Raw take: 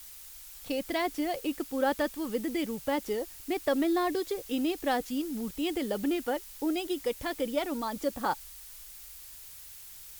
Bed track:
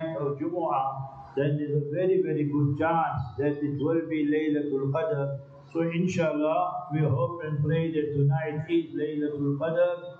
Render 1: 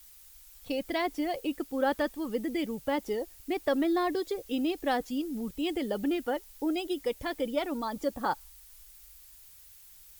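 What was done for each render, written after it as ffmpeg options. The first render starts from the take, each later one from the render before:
-af "afftdn=nr=8:nf=-48"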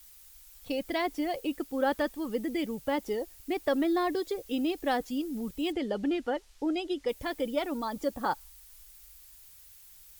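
-filter_complex "[0:a]asettb=1/sr,asplit=3[a][b][c];[a]atrim=end=5.724[d];[b]atrim=start=5.72:end=7.09,asetpts=PTS-STARTPTS,afade=t=in:d=0.004:c=qsin,afade=t=out:st=1.366:d=0.004:c=qsin,lowpass=6.1k[e];[c]atrim=start=7.086[f];[d][e]acrossfade=d=0.004:c1=hsin:c2=qsin[g];[g][f]acrossfade=d=0.004:c1=qsin:c2=hsin"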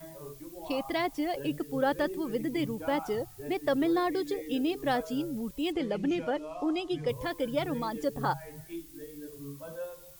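-filter_complex "[1:a]volume=-15.5dB[a];[0:a][a]amix=inputs=2:normalize=0"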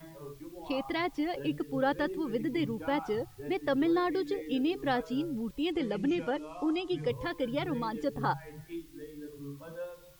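-filter_complex "[0:a]acrossover=split=5000[a][b];[b]acompressor=threshold=-60dB:ratio=4:attack=1:release=60[c];[a][c]amix=inputs=2:normalize=0,equalizer=f=640:t=o:w=0.25:g=-8"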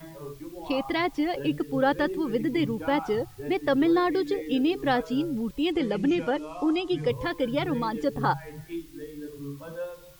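-af "volume=5.5dB"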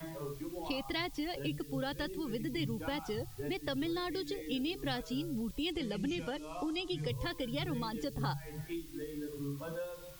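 -filter_complex "[0:a]acrossover=split=140|3000[a][b][c];[b]acompressor=threshold=-38dB:ratio=5[d];[a][d][c]amix=inputs=3:normalize=0"

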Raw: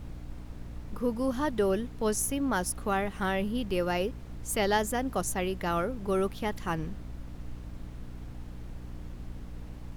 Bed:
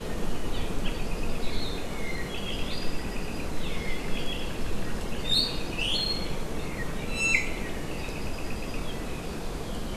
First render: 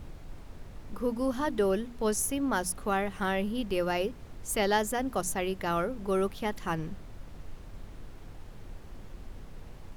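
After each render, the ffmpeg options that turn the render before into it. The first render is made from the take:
-af "bandreject=f=60:t=h:w=6,bandreject=f=120:t=h:w=6,bandreject=f=180:t=h:w=6,bandreject=f=240:t=h:w=6,bandreject=f=300:t=h:w=6"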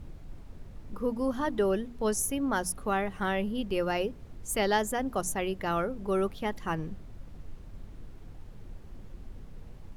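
-af "afftdn=nr=6:nf=-47"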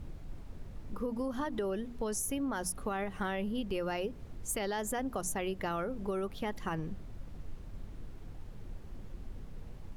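-af "alimiter=limit=-22.5dB:level=0:latency=1,acompressor=threshold=-31dB:ratio=6"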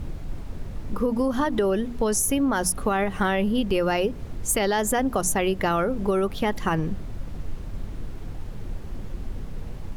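-af "volume=12dB"

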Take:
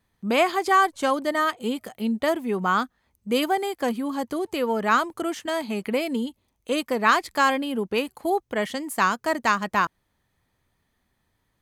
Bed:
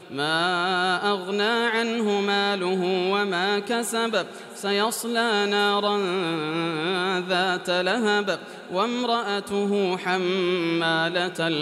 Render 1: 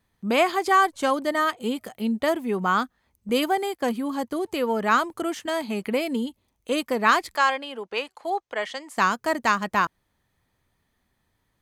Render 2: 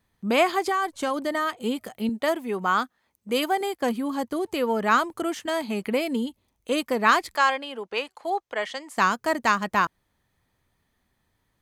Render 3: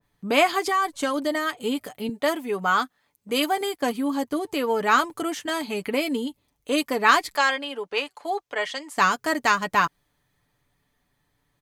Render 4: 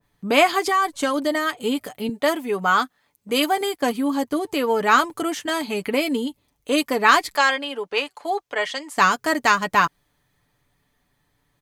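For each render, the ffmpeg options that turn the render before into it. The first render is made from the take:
-filter_complex "[0:a]asettb=1/sr,asplit=3[a][b][c];[a]atrim=end=3.294[d];[b]atrim=start=3.29:end=4.32,asetpts=PTS-STARTPTS,afade=t=in:d=0.004:c=qsin,afade=t=out:st=1.026:d=0.004:c=qsin,agate=range=-10dB:threshold=-43dB:ratio=16:release=100:detection=peak[e];[c]atrim=start=4.316[f];[d][e]acrossfade=d=0.004:c1=hsin:c2=qsin[g];[g][f]acrossfade=d=0.004:c1=qsin:c2=hsin,asettb=1/sr,asplit=3[h][i][j];[h]atrim=end=7.364[k];[i]atrim=start=7.36:end=8.97,asetpts=PTS-STARTPTS,afade=t=in:d=0.004:c=qsin,afade=t=out:st=1.606:d=0.004:c=qsin,acrossover=split=460 7800:gain=0.112 1 0.0708[l][m][n];[l][m][n]amix=inputs=3:normalize=0[o];[j]atrim=start=8.966[p];[k][o]acrossfade=d=0.004:c1=hsin:c2=qsin[q];[q][p]acrossfade=d=0.004:c1=qsin:c2=hsin"
-filter_complex "[0:a]asettb=1/sr,asplit=3[a][b][c];[a]atrim=end=0.694[d];[b]atrim=start=0.69:end=1.53,asetpts=PTS-STARTPTS,afade=t=in:d=0.004:c=qsin,afade=t=out:st=0.836:d=0.004:c=qsin,acompressor=threshold=-21dB:ratio=6:attack=3.2:release=140:knee=1:detection=peak[e];[c]atrim=start=1.526[f];[d][e]acrossfade=d=0.004:c1=hsin:c2=qsin[g];[g][f]acrossfade=d=0.004:c1=qsin:c2=hsin,asettb=1/sr,asplit=3[h][i][j];[h]atrim=end=2.094[k];[i]atrim=start=2.09:end=3.61,asetpts=PTS-STARTPTS,afade=t=in:d=0.004:c=qsin,afade=t=out:st=1.516:d=0.004:c=qsin,highpass=f=310:p=1[l];[j]atrim=start=3.606[m];[k][l]acrossfade=d=0.004:c1=hsin:c2=qsin[n];[n][m]acrossfade=d=0.004:c1=qsin:c2=hsin"
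-af "aecho=1:1:6.9:0.52,adynamicequalizer=threshold=0.0282:dfrequency=2000:dqfactor=0.7:tfrequency=2000:tqfactor=0.7:attack=5:release=100:ratio=0.375:range=1.5:mode=boostabove:tftype=highshelf"
-af "volume=3dB,alimiter=limit=-3dB:level=0:latency=1"

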